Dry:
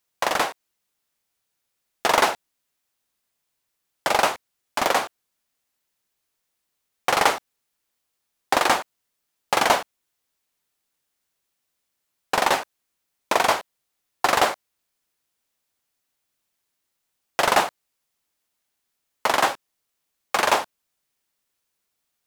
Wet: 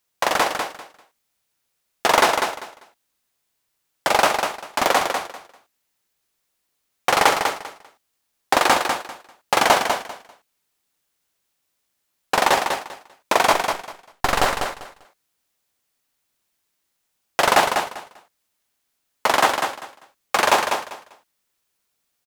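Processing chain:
0:13.53–0:14.46: gain on one half-wave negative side −12 dB
on a send: repeating echo 197 ms, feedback 21%, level −6 dB
on the sum: level +2.5 dB

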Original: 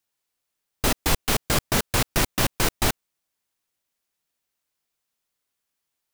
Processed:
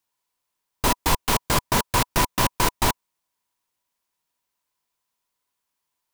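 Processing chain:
parametric band 980 Hz +13 dB 0.23 octaves

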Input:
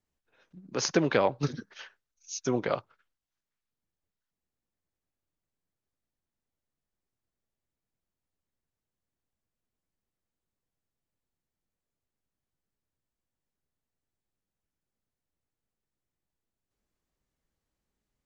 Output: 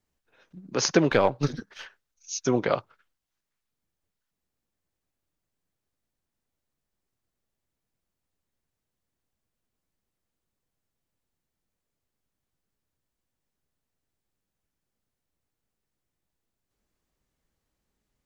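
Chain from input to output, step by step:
0:01.09–0:01.86: gain on one half-wave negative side −3 dB
level +4.5 dB

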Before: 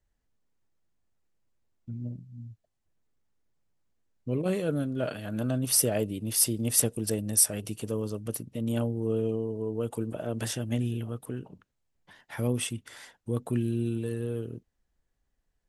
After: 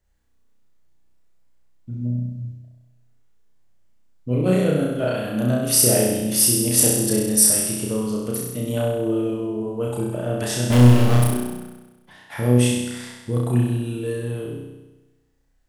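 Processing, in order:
0:10.70–0:11.24: power curve on the samples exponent 0.35
flutter between parallel walls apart 5.6 metres, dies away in 1.1 s
level +4.5 dB

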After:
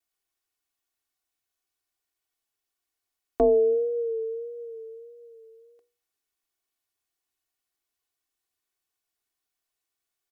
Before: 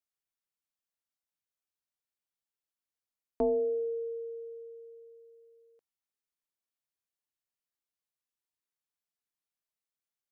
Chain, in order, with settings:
pitch vibrato 1.6 Hz 52 cents
mains-hum notches 60/120/180/240/300/360/420/480 Hz
comb filter 2.7 ms
level +6.5 dB

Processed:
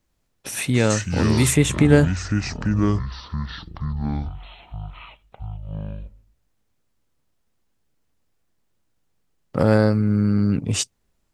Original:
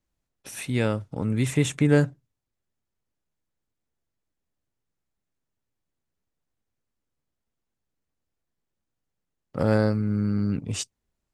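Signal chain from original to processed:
in parallel at 0 dB: downward compressor, threshold −29 dBFS, peak gain reduction 14.5 dB
on the sum: delay with pitch and tempo change per echo 96 ms, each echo −6 semitones, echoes 3, each echo −6 dB
0:00.90–0:01.56: high-shelf EQ 4,200 Hz +10.5 dB
level +3 dB

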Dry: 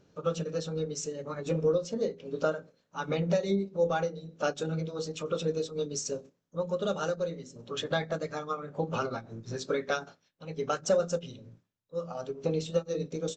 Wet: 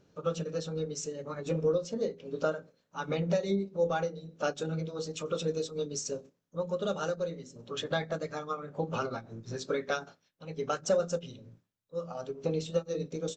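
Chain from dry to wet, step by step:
0:05.09–0:05.78: high-shelf EQ 6,400 Hz +7.5 dB
level −1.5 dB

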